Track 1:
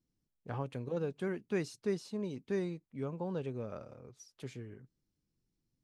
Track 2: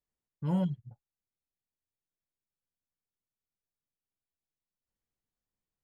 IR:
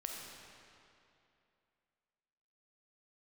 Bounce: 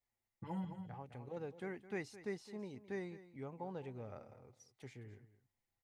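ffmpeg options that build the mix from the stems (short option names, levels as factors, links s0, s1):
-filter_complex "[0:a]agate=range=0.398:threshold=0.001:ratio=16:detection=peak,adelay=400,volume=0.355,asplit=2[s0][s1];[s1]volume=0.168[s2];[1:a]bandreject=f=60:t=h:w=6,bandreject=f=120:t=h:w=6,bandreject=f=180:t=h:w=6,acompressor=threshold=0.0126:ratio=10,asplit=2[s3][s4];[s4]adelay=5.3,afreqshift=-0.55[s5];[s3][s5]amix=inputs=2:normalize=1,volume=1.19,asplit=3[s6][s7][s8];[s7]volume=0.376[s9];[s8]apad=whole_len=279404[s10];[s0][s10]sidechaincompress=threshold=0.00398:ratio=8:attack=11:release=943[s11];[s2][s9]amix=inputs=2:normalize=0,aecho=0:1:213:1[s12];[s11][s6][s12]amix=inputs=3:normalize=0,equalizer=f=100:t=o:w=0.33:g=8,equalizer=f=160:t=o:w=0.33:g=-3,equalizer=f=800:t=o:w=0.33:g=11,equalizer=f=2000:t=o:w=0.33:g=10"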